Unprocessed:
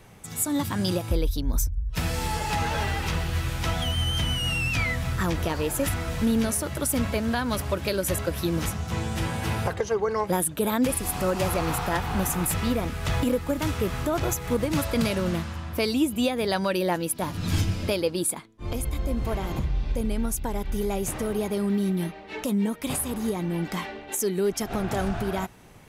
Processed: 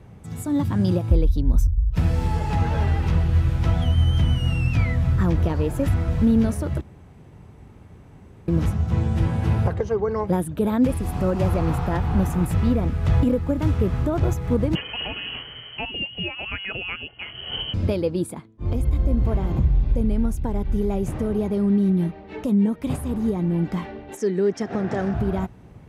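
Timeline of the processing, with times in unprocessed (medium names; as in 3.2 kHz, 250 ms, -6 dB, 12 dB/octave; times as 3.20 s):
6.81–8.48 s: room tone
14.75–17.74 s: frequency inversion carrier 3.1 kHz
24.17–25.14 s: cabinet simulation 180–8700 Hz, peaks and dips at 480 Hz +4 dB, 1.8 kHz +9 dB, 5.5 kHz +6 dB
whole clip: high-pass 60 Hz; tilt EQ -3.5 dB/octave; trim -2 dB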